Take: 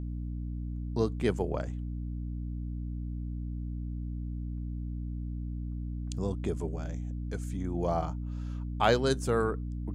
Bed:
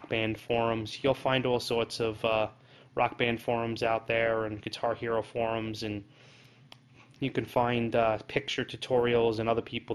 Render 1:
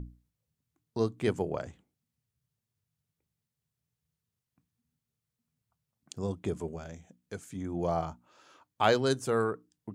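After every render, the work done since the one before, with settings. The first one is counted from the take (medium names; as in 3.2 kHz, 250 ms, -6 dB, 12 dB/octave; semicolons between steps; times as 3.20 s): hum notches 60/120/180/240/300 Hz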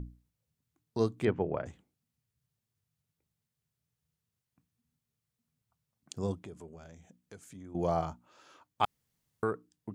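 1.25–1.66 s: low-pass 2.7 kHz 24 dB/octave; 6.41–7.75 s: compression 2:1, threshold -53 dBFS; 8.85–9.43 s: room tone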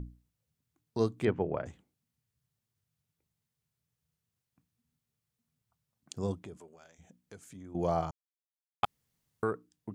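6.56–6.98 s: high-pass 400 Hz -> 1.4 kHz 6 dB/octave; 8.11–8.83 s: mute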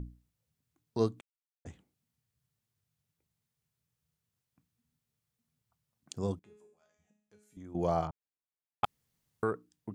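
1.21–1.65 s: mute; 6.39–7.57 s: feedback comb 210 Hz, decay 0.64 s, mix 90%; 8.07–8.84 s: distance through air 460 m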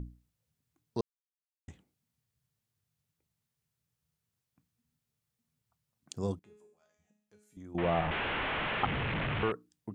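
1.01–1.68 s: mute; 7.78–9.52 s: one-bit delta coder 16 kbps, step -26.5 dBFS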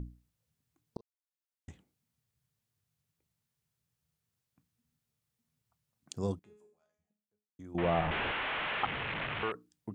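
0.97–1.70 s: fade in; 6.26–7.59 s: studio fade out; 8.31–9.55 s: bass shelf 390 Hz -11 dB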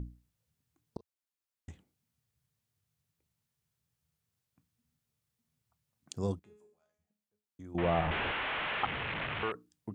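peaking EQ 80 Hz +3.5 dB 0.5 oct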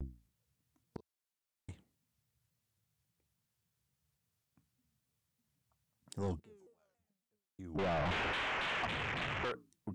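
saturation -31 dBFS, distortion -9 dB; vibrato with a chosen wave saw down 3.6 Hz, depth 250 cents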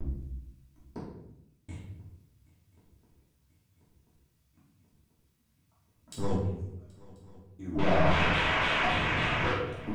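shuffle delay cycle 1036 ms, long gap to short 3:1, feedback 67%, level -23 dB; simulated room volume 200 m³, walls mixed, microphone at 2.8 m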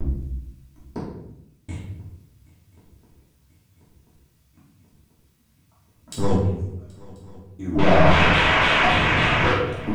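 trim +9.5 dB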